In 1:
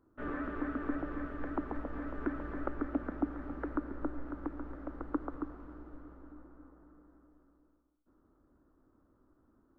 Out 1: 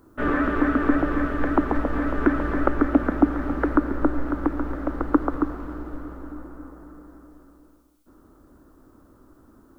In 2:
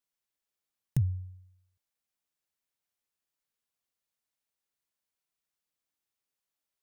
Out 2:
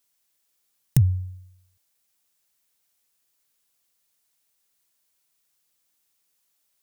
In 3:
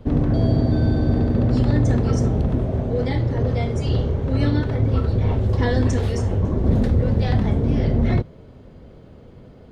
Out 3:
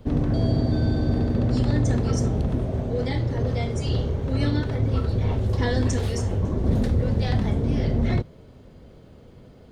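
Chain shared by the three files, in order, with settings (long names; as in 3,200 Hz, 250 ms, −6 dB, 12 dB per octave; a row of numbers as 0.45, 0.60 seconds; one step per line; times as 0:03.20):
high-shelf EQ 4,000 Hz +9 dB
loudness normalisation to −24 LKFS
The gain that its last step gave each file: +15.5, +9.0, −3.5 decibels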